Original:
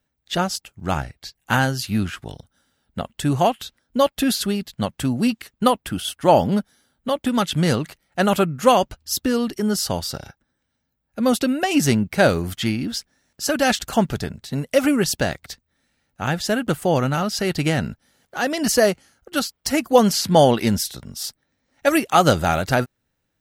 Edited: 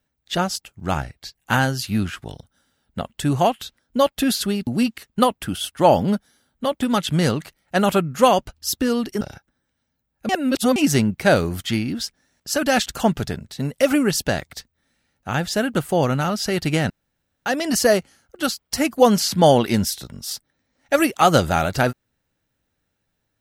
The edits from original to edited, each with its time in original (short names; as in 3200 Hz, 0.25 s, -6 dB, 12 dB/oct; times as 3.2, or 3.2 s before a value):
4.67–5.11 cut
9.65–10.14 cut
11.22–11.69 reverse
17.83–18.39 room tone